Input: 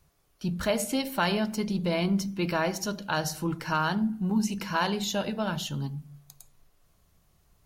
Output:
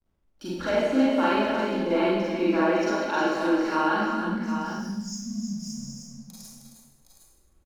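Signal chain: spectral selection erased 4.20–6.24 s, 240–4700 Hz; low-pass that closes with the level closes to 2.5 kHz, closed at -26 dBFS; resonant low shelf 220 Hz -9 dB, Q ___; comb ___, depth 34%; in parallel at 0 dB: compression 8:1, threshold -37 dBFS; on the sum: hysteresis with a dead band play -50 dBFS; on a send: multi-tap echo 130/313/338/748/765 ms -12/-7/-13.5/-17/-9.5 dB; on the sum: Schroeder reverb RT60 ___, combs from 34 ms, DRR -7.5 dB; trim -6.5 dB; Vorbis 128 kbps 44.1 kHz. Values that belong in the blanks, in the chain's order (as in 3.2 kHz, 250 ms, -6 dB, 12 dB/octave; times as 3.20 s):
3, 3.6 ms, 0.9 s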